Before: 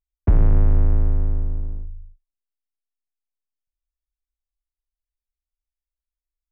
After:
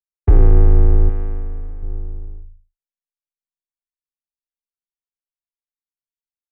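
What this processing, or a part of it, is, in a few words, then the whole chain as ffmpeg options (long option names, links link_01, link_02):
ducked delay: -filter_complex "[0:a]agate=range=-33dB:threshold=-26dB:ratio=3:detection=peak,adynamicequalizer=threshold=0.0141:dfrequency=390:dqfactor=0.86:tfrequency=390:tqfactor=0.86:attack=5:release=100:ratio=0.375:range=3:mode=boostabove:tftype=bell,aecho=1:1:2.5:0.7,asplit=3[link_01][link_02][link_03];[link_02]adelay=588,volume=-8.5dB[link_04];[link_03]apad=whole_len=313158[link_05];[link_04][link_05]sidechaincompress=threshold=-26dB:ratio=8:attack=16:release=157[link_06];[link_01][link_06]amix=inputs=2:normalize=0,asettb=1/sr,asplit=3[link_07][link_08][link_09];[link_07]atrim=end=1.094[link_10];[link_08]atrim=start=1.09:end=1.83,asetpts=PTS-STARTPTS,afade=type=in:duration=0.004:curve=qsin,afade=type=out:start_time=0.736:duration=0.004:curve=qsin,tiltshelf=frequency=1100:gain=-7[link_11];[link_09]atrim=start=1.826[link_12];[link_10][link_11]acrossfade=duration=0.004:curve1=hsin:curve2=qsin[link_13];[link_13][link_12]acrossfade=duration=0.004:curve1=qsin:curve2=hsin,volume=1dB"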